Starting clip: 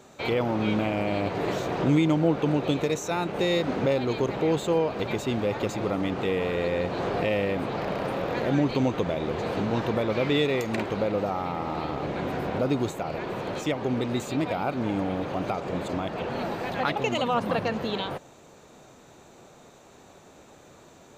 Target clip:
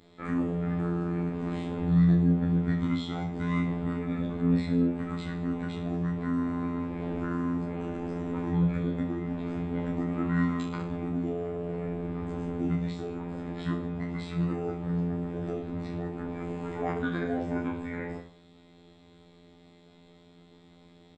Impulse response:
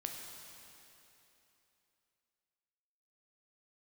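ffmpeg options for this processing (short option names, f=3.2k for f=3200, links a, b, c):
-af "asetrate=24046,aresample=44100,atempo=1.83401,afftfilt=real='hypot(re,im)*cos(PI*b)':imag='0':win_size=2048:overlap=0.75,aecho=1:1:30|64.5|104.2|149.8|202.3:0.631|0.398|0.251|0.158|0.1,volume=-3dB"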